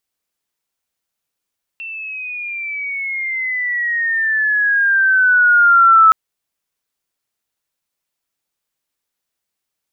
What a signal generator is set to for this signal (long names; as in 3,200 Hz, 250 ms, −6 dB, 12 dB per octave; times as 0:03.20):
glide logarithmic 2,700 Hz → 1,300 Hz −26 dBFS → −5 dBFS 4.32 s